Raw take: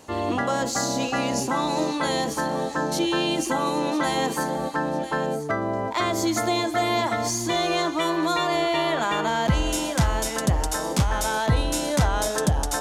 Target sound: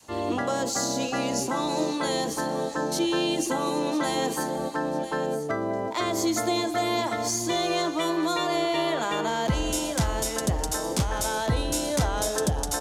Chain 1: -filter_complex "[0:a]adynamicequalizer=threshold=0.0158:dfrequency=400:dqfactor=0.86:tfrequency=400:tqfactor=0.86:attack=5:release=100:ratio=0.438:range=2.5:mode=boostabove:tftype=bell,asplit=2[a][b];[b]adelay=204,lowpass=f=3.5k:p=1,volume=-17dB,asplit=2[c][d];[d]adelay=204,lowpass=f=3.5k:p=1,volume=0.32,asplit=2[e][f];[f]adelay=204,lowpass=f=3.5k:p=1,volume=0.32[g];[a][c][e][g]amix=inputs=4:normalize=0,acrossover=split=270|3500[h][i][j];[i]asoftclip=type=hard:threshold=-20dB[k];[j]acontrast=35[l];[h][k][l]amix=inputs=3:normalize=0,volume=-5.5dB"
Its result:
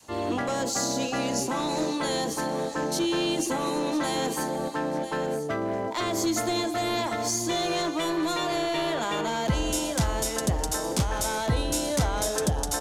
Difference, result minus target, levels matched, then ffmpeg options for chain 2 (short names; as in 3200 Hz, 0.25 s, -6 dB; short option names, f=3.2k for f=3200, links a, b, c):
hard clip: distortion +32 dB
-filter_complex "[0:a]adynamicequalizer=threshold=0.0158:dfrequency=400:dqfactor=0.86:tfrequency=400:tqfactor=0.86:attack=5:release=100:ratio=0.438:range=2.5:mode=boostabove:tftype=bell,asplit=2[a][b];[b]adelay=204,lowpass=f=3.5k:p=1,volume=-17dB,asplit=2[c][d];[d]adelay=204,lowpass=f=3.5k:p=1,volume=0.32,asplit=2[e][f];[f]adelay=204,lowpass=f=3.5k:p=1,volume=0.32[g];[a][c][e][g]amix=inputs=4:normalize=0,acrossover=split=270|3500[h][i][j];[i]asoftclip=type=hard:threshold=-12.5dB[k];[j]acontrast=35[l];[h][k][l]amix=inputs=3:normalize=0,volume=-5.5dB"